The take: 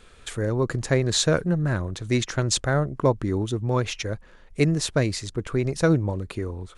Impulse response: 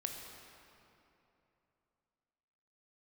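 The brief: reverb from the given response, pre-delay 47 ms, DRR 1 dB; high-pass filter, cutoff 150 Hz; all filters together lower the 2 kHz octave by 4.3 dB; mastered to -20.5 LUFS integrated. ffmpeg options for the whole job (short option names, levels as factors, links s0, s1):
-filter_complex "[0:a]highpass=150,equalizer=f=2000:t=o:g=-6,asplit=2[s0][s1];[1:a]atrim=start_sample=2205,adelay=47[s2];[s1][s2]afir=irnorm=-1:irlink=0,volume=0.891[s3];[s0][s3]amix=inputs=2:normalize=0,volume=1.41"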